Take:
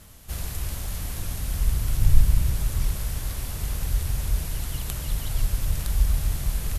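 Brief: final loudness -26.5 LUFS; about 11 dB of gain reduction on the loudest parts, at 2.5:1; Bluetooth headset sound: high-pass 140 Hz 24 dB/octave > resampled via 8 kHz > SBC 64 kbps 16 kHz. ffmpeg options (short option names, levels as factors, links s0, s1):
-af "acompressor=threshold=0.0631:ratio=2.5,highpass=f=140:w=0.5412,highpass=f=140:w=1.3066,aresample=8000,aresample=44100,volume=6.31" -ar 16000 -c:a sbc -b:a 64k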